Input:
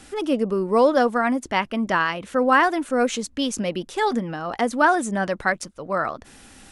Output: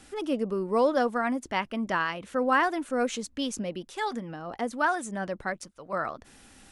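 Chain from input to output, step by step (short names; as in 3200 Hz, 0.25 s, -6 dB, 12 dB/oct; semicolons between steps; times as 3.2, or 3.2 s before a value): 3.58–5.93 harmonic tremolo 1.1 Hz, depth 50%, crossover 730 Hz; gain -6.5 dB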